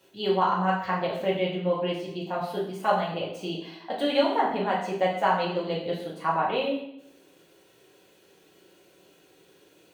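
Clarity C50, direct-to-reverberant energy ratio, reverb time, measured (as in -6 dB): 4.5 dB, -5.0 dB, 0.75 s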